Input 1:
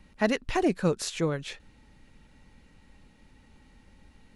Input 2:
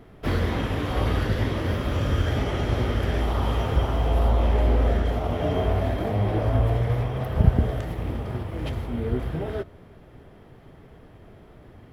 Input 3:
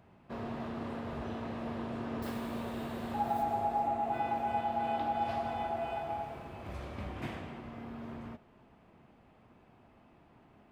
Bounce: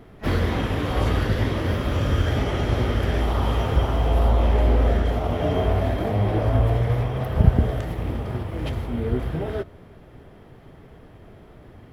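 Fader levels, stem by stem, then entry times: −17.0 dB, +2.0 dB, muted; 0.00 s, 0.00 s, muted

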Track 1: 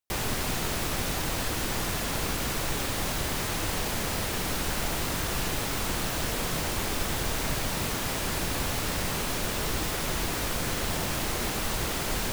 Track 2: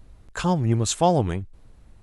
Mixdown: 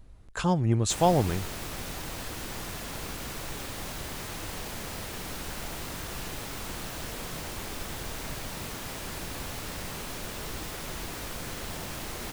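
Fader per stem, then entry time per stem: −7.5, −3.0 decibels; 0.80, 0.00 seconds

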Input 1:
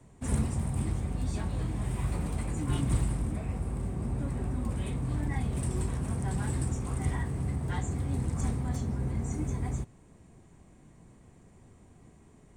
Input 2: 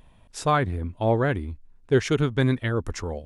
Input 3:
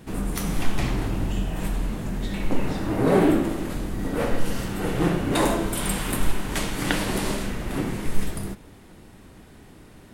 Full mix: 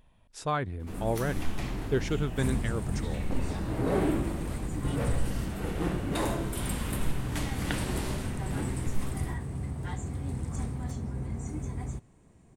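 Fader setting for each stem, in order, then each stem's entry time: −3.0, −8.0, −9.0 decibels; 2.15, 0.00, 0.80 seconds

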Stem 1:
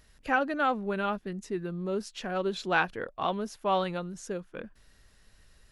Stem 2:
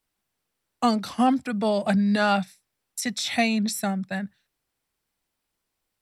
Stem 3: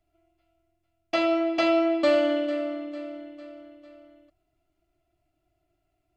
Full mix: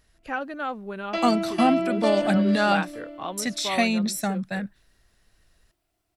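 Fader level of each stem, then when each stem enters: −3.5, 0.0, −3.5 decibels; 0.00, 0.40, 0.00 seconds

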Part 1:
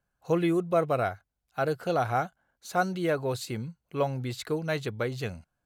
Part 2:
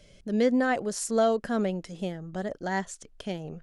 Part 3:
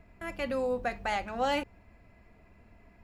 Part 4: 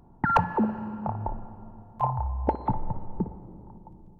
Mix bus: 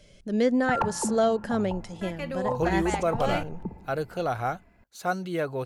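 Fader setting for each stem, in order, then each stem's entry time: −1.5, +0.5, −1.5, −6.0 decibels; 2.30, 0.00, 1.80, 0.45 seconds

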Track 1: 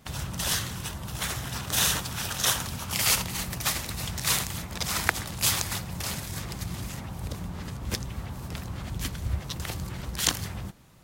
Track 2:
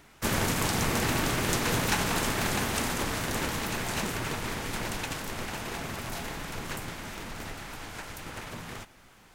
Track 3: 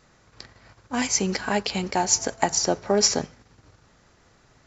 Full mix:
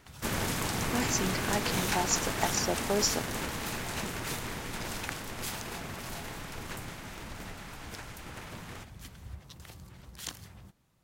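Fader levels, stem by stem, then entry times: −15.0, −4.5, −8.5 decibels; 0.00, 0.00, 0.00 seconds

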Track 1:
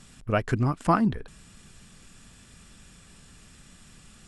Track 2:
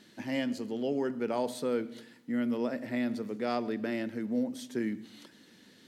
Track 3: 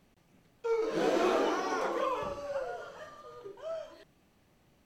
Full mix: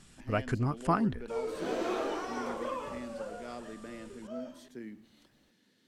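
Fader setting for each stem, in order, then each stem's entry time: −6.0, −12.0, −5.0 decibels; 0.00, 0.00, 0.65 seconds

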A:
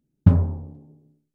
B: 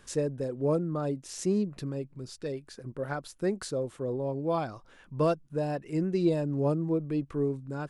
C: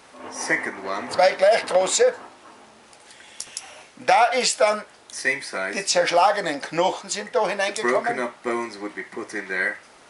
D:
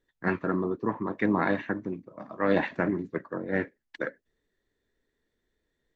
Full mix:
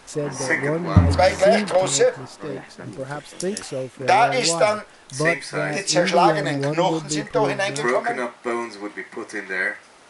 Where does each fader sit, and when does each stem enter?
+0.5, +3.0, +0.5, −11.5 decibels; 0.70, 0.00, 0.00, 0.00 seconds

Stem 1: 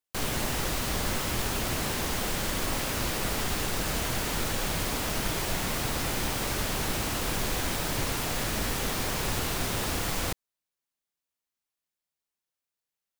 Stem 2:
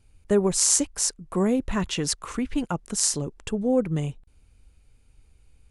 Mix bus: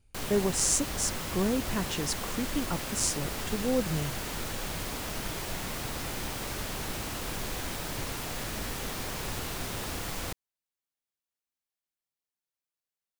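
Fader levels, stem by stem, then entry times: −5.5, −6.0 decibels; 0.00, 0.00 seconds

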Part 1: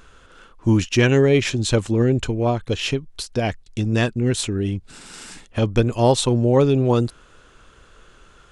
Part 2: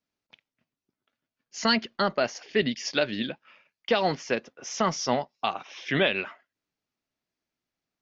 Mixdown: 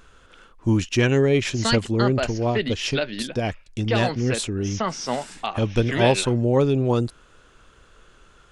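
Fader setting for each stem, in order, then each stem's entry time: −3.0, −0.5 decibels; 0.00, 0.00 seconds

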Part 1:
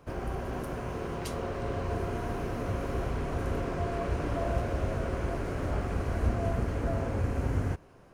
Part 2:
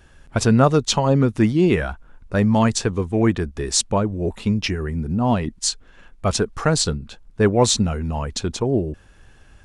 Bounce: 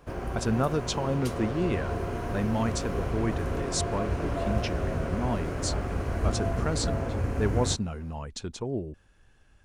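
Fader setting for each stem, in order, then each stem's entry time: +1.0, −11.5 decibels; 0.00, 0.00 seconds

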